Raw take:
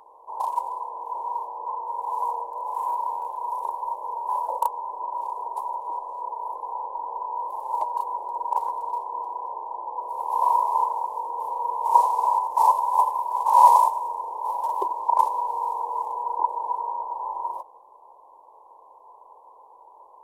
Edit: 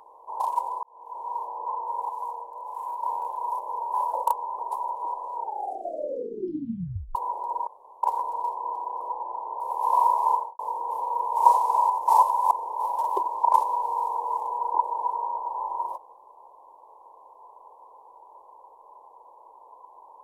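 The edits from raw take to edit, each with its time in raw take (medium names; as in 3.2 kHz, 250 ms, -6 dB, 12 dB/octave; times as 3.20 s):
0.83–1.50 s: fade in
2.09–3.03 s: gain -6.5 dB
3.59–3.94 s: delete
4.94–5.44 s: delete
6.19 s: tape stop 1.81 s
8.52 s: insert room tone 0.36 s
9.50–10.09 s: reverse
10.82–11.08 s: studio fade out
13.00–14.16 s: delete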